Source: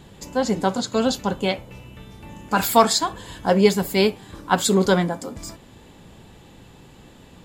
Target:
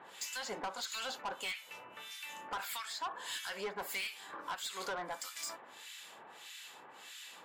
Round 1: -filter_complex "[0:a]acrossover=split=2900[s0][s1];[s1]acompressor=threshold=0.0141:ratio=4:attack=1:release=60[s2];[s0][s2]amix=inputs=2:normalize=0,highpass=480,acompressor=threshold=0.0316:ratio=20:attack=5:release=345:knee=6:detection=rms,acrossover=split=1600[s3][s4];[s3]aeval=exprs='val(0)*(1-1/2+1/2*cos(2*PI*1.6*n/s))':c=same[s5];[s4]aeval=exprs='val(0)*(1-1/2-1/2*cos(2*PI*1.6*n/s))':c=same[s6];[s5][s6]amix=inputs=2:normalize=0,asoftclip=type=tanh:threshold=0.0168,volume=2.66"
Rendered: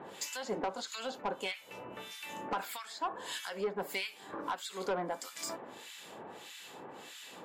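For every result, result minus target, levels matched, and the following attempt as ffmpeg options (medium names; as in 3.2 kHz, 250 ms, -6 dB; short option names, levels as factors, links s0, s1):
500 Hz band +6.0 dB; saturation: distortion -5 dB
-filter_complex "[0:a]acrossover=split=2900[s0][s1];[s1]acompressor=threshold=0.0141:ratio=4:attack=1:release=60[s2];[s0][s2]amix=inputs=2:normalize=0,highpass=1100,acompressor=threshold=0.0316:ratio=20:attack=5:release=345:knee=6:detection=rms,acrossover=split=1600[s3][s4];[s3]aeval=exprs='val(0)*(1-1/2+1/2*cos(2*PI*1.6*n/s))':c=same[s5];[s4]aeval=exprs='val(0)*(1-1/2-1/2*cos(2*PI*1.6*n/s))':c=same[s6];[s5][s6]amix=inputs=2:normalize=0,asoftclip=type=tanh:threshold=0.0168,volume=2.66"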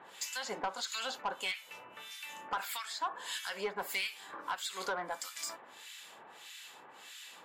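saturation: distortion -6 dB
-filter_complex "[0:a]acrossover=split=2900[s0][s1];[s1]acompressor=threshold=0.0141:ratio=4:attack=1:release=60[s2];[s0][s2]amix=inputs=2:normalize=0,highpass=1100,acompressor=threshold=0.0316:ratio=20:attack=5:release=345:knee=6:detection=rms,acrossover=split=1600[s3][s4];[s3]aeval=exprs='val(0)*(1-1/2+1/2*cos(2*PI*1.6*n/s))':c=same[s5];[s4]aeval=exprs='val(0)*(1-1/2-1/2*cos(2*PI*1.6*n/s))':c=same[s6];[s5][s6]amix=inputs=2:normalize=0,asoftclip=type=tanh:threshold=0.0075,volume=2.66"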